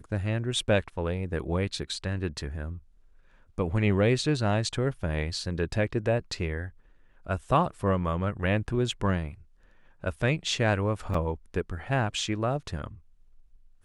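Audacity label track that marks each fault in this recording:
11.140000	11.140000	drop-out 4.2 ms

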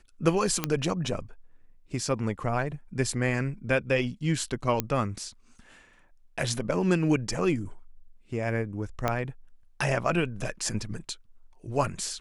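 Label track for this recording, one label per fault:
0.640000	0.640000	click −9 dBFS
4.800000	4.800000	click −9 dBFS
9.080000	9.080000	click −12 dBFS

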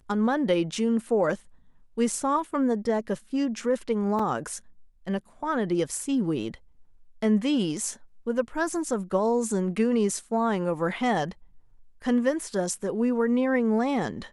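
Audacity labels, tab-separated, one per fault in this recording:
4.190000	4.190000	drop-out 4.2 ms

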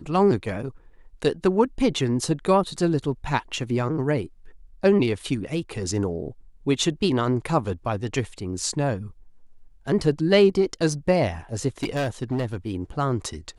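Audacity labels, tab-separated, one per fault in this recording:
11.830000	12.750000	clipping −21 dBFS

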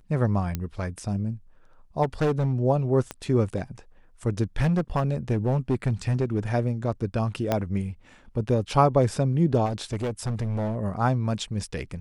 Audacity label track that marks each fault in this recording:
0.550000	0.550000	click −14 dBFS
2.020000	2.540000	clipping −19 dBFS
3.110000	3.110000	click −17 dBFS
4.600000	6.400000	clipping −18 dBFS
7.520000	7.520000	click −10 dBFS
9.650000	10.770000	clipping −24 dBFS

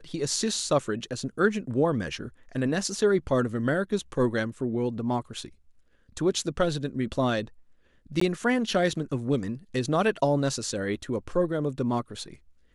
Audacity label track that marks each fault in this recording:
8.200000	8.210000	drop-out 14 ms

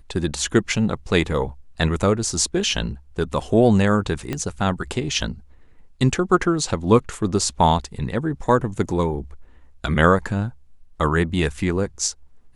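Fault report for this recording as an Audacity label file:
4.330000	4.330000	click −12 dBFS

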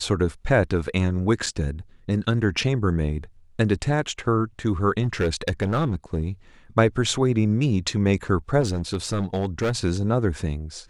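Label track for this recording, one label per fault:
1.460000	1.470000	drop-out 6 ms
5.020000	6.220000	clipping −17 dBFS
8.600000	9.770000	clipping −19 dBFS

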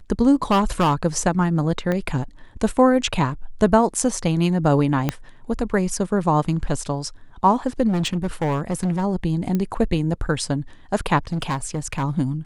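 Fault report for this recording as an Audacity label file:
0.510000	0.950000	clipping −13.5 dBFS
1.920000	1.920000	click −12 dBFS
5.090000	5.090000	click −7 dBFS
7.880000	9.040000	clipping −18 dBFS
9.550000	9.550000	click −12 dBFS
11.320000	12.040000	clipping −19.5 dBFS

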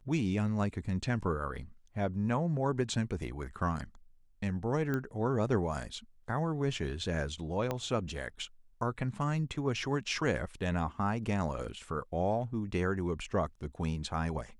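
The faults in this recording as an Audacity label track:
4.940000	4.940000	click −21 dBFS
7.710000	7.710000	click −19 dBFS

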